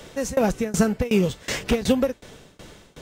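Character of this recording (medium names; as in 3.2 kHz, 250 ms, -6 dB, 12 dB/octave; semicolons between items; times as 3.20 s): tremolo saw down 2.7 Hz, depth 95%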